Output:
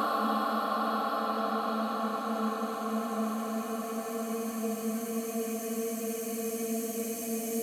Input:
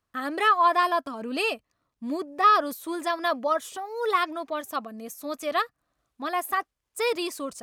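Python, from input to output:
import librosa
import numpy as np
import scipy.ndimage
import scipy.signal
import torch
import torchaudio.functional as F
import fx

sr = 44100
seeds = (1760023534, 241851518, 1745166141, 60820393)

y = fx.paulstretch(x, sr, seeds[0], factor=37.0, window_s=0.5, from_s=4.86)
y = fx.echo_swell(y, sr, ms=84, loudest=5, wet_db=-17.5)
y = y * librosa.db_to_amplitude(5.0)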